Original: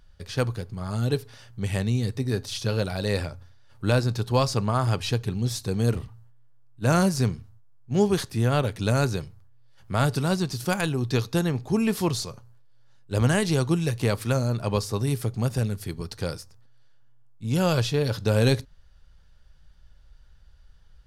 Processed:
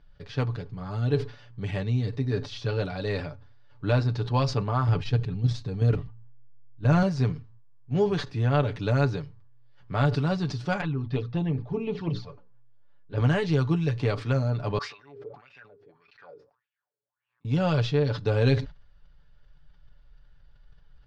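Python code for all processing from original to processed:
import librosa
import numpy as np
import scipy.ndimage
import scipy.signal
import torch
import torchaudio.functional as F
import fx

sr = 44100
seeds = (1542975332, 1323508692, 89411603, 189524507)

y = fx.chain(x, sr, fx.low_shelf(hz=120.0, db=10.5),
    fx.level_steps(step_db=9), at=(4.88, 7.03))
y = fx.chain(y, sr, fx.hum_notches(base_hz=60, count=9),
    fx.env_flanger(rest_ms=7.8, full_db=-20.0),
    fx.air_absorb(metres=190.0), at=(10.81, 13.18))
y = fx.chain(y, sr, fx.low_shelf(hz=420.0, db=-4.5),
    fx.wah_lfo(hz=1.7, low_hz=390.0, high_hz=2600.0, q=7.5),
    fx.pre_swell(db_per_s=75.0), at=(14.78, 17.45))
y = scipy.signal.sosfilt(scipy.signal.bessel(4, 3300.0, 'lowpass', norm='mag', fs=sr, output='sos'), y)
y = y + 0.64 * np.pad(y, (int(6.9 * sr / 1000.0), 0))[:len(y)]
y = fx.sustainer(y, sr, db_per_s=140.0)
y = y * 10.0 ** (-3.5 / 20.0)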